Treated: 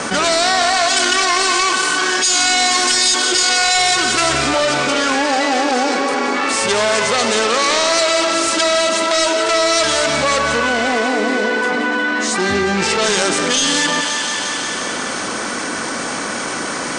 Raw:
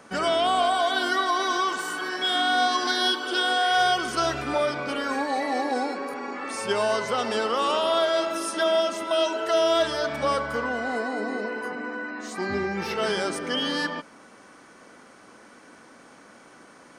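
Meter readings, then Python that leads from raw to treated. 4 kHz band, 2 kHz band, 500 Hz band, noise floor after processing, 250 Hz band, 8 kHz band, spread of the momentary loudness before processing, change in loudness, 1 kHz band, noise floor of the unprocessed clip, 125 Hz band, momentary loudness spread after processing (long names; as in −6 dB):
+12.0 dB, +11.5 dB, +7.5 dB, −23 dBFS, +10.0 dB, +22.0 dB, 9 LU, +10.0 dB, +7.5 dB, −51 dBFS, +10.5 dB, 9 LU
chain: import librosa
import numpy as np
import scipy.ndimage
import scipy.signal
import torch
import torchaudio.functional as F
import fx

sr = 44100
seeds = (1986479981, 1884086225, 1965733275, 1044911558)

p1 = fx.self_delay(x, sr, depth_ms=0.21)
p2 = scipy.signal.sosfilt(scipy.signal.butter(12, 9200.0, 'lowpass', fs=sr, output='sos'), p1)
p3 = fx.high_shelf(p2, sr, hz=3100.0, db=9.0)
p4 = p3 + fx.echo_thinned(p3, sr, ms=177, feedback_pct=69, hz=420.0, wet_db=-12, dry=0)
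p5 = fx.env_flatten(p4, sr, amount_pct=70)
y = p5 * librosa.db_to_amplitude(3.5)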